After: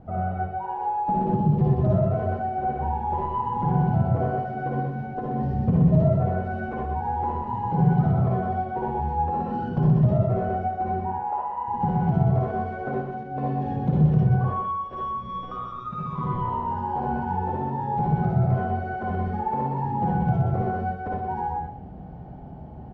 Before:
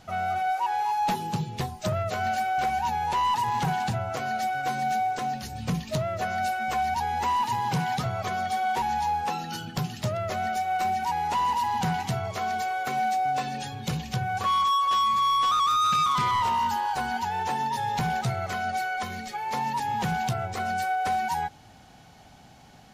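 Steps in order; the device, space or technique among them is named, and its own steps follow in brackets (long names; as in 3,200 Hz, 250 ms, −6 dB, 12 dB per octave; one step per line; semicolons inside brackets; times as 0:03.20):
0:11.00–0:11.68: three-way crossover with the lows and the highs turned down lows −21 dB, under 580 Hz, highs −13 dB, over 2,200 Hz
single-tap delay 124 ms −3 dB
television next door (downward compressor, threshold −27 dBFS, peak gain reduction 8.5 dB; low-pass filter 490 Hz 12 dB per octave; convolution reverb RT60 0.40 s, pre-delay 51 ms, DRR −3 dB)
level +8 dB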